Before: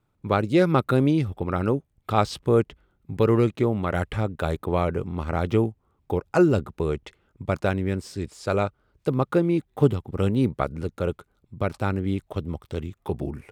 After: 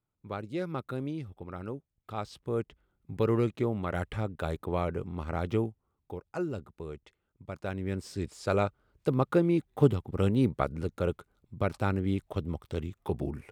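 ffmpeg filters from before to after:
-af "volume=1.68,afade=t=in:st=2.33:d=0.78:silence=0.398107,afade=t=out:st=5.53:d=0.64:silence=0.398107,afade=t=in:st=7.58:d=0.6:silence=0.266073"

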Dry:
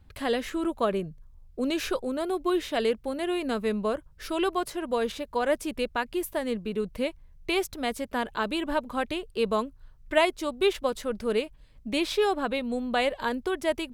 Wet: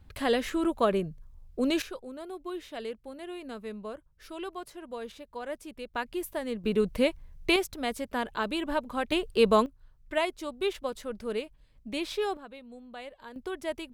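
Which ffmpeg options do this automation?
-af "asetnsamples=n=441:p=0,asendcmd='1.82 volume volume -11.5dB;5.94 volume volume -4dB;6.64 volume volume 4dB;7.56 volume volume -2dB;9.12 volume volume 4.5dB;9.66 volume volume -6dB;12.37 volume volume -17.5dB;13.36 volume volume -7dB',volume=1.12"

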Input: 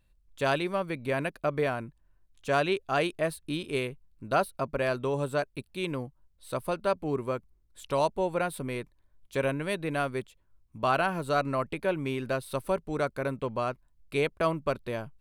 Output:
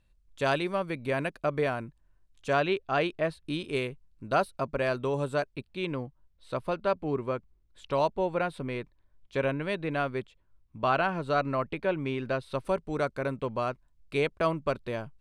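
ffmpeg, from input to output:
-af "asetnsamples=n=441:p=0,asendcmd='2.53 lowpass f 4300;3.45 lowpass f 8000;5.54 lowpass f 4500;12.65 lowpass f 7700',lowpass=9300"

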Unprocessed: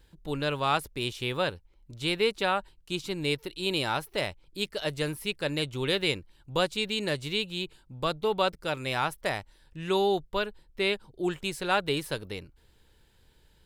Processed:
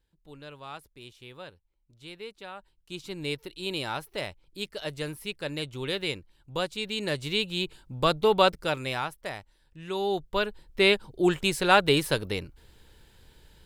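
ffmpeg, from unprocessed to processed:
-af "volume=7.94,afade=t=in:st=2.54:d=0.68:silence=0.251189,afade=t=in:st=6.78:d=1.17:silence=0.354813,afade=t=out:st=8.45:d=0.67:silence=0.266073,afade=t=in:st=9.95:d=0.88:silence=0.237137"

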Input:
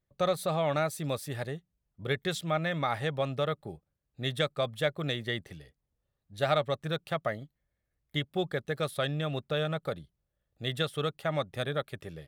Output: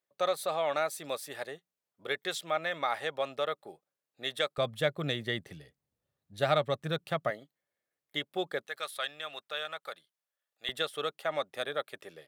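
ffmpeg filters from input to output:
-af "asetnsamples=n=441:p=0,asendcmd='4.58 highpass f 110;7.3 highpass f 360;8.67 highpass f 990;10.69 highpass f 430',highpass=460"

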